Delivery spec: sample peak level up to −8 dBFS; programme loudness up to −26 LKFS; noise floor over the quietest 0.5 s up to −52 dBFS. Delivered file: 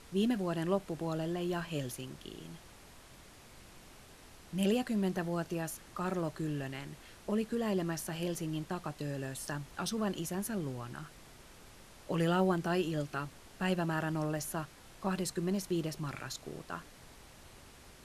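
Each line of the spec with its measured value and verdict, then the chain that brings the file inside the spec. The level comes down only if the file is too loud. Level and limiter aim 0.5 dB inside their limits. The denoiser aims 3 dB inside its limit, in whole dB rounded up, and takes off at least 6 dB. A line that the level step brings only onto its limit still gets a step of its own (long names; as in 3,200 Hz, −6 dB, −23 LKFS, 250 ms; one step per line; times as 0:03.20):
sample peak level −17.5 dBFS: in spec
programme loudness −36.0 LKFS: in spec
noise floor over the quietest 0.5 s −55 dBFS: in spec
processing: no processing needed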